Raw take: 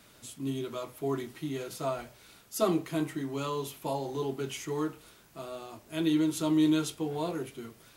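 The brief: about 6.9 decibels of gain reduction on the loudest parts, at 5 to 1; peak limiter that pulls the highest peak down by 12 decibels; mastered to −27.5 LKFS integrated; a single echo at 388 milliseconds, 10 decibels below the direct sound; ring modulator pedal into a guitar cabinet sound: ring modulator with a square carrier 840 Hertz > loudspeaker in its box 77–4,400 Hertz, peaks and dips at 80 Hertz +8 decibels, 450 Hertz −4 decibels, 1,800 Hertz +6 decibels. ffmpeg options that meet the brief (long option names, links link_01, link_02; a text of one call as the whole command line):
ffmpeg -i in.wav -af "acompressor=threshold=-29dB:ratio=5,alimiter=level_in=9dB:limit=-24dB:level=0:latency=1,volume=-9dB,aecho=1:1:388:0.316,aeval=exprs='val(0)*sgn(sin(2*PI*840*n/s))':channel_layout=same,highpass=77,equalizer=frequency=80:width_type=q:width=4:gain=8,equalizer=frequency=450:width_type=q:width=4:gain=-4,equalizer=frequency=1800:width_type=q:width=4:gain=6,lowpass=frequency=4400:width=0.5412,lowpass=frequency=4400:width=1.3066,volume=13.5dB" out.wav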